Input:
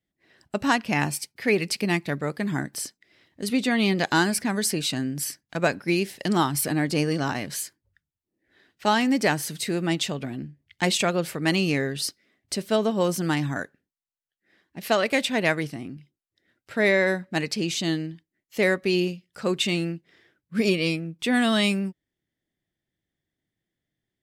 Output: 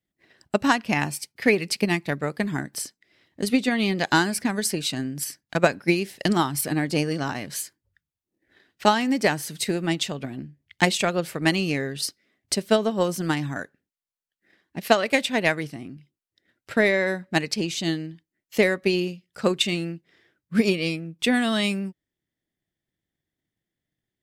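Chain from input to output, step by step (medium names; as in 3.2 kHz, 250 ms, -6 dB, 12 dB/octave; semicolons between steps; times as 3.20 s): transient shaper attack +8 dB, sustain 0 dB; trim -2 dB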